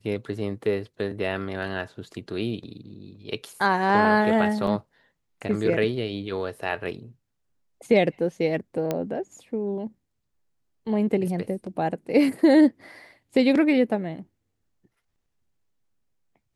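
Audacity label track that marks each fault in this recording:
4.670000	4.670000	dropout 2.9 ms
8.910000	8.910000	pop -12 dBFS

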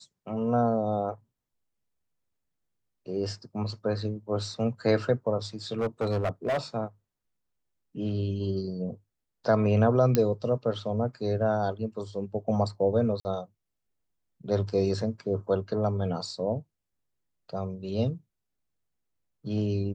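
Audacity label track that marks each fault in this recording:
5.720000	6.580000	clipped -23.5 dBFS
10.150000	10.150000	pop -9 dBFS
13.200000	13.250000	dropout 49 ms

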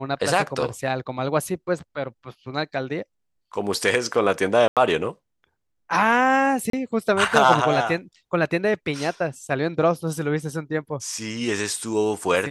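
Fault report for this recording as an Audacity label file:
4.680000	4.770000	dropout 87 ms
6.700000	6.730000	dropout 33 ms

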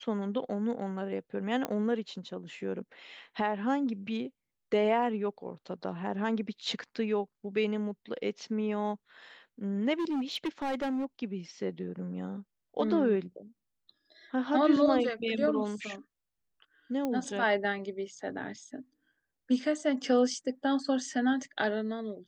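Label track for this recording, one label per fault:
1.650000	1.650000	pop -17 dBFS
9.990000	11.050000	clipped -28.5 dBFS
17.050000	17.050000	pop -20 dBFS

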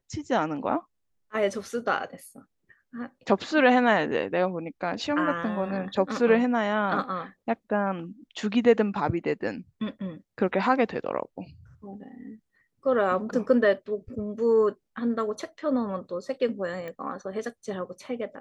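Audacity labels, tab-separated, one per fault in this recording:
16.880000	16.880000	pop -26 dBFS

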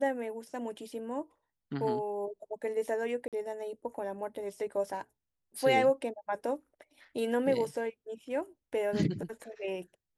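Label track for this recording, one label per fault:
3.280000	3.330000	dropout 47 ms

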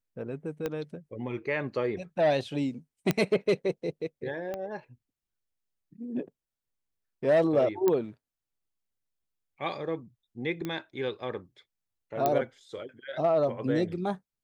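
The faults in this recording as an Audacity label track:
0.660000	0.660000	pop -18 dBFS
3.110000	3.110000	pop -11 dBFS
4.540000	4.540000	pop -22 dBFS
7.880000	7.880000	pop -13 dBFS
10.650000	10.650000	pop -20 dBFS
12.260000	12.260000	pop -12 dBFS

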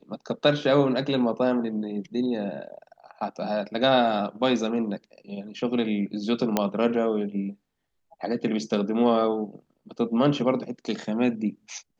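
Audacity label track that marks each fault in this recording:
6.570000	6.570000	pop -7 dBFS

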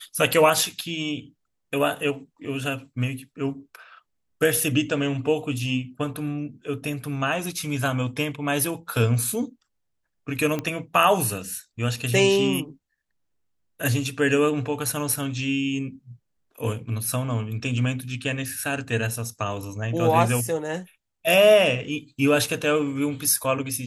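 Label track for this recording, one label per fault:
10.590000	10.590000	pop -14 dBFS

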